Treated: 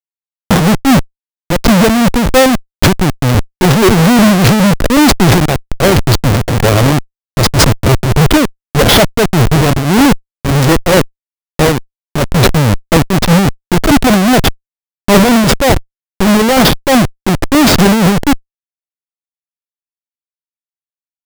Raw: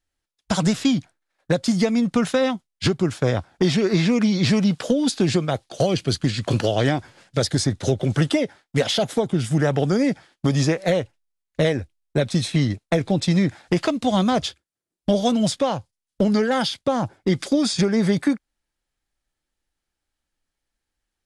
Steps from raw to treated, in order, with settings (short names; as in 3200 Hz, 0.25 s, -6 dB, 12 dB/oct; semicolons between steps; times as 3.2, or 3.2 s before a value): Schmitt trigger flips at -23 dBFS; maximiser +23 dB; noise-modulated level, depth 65%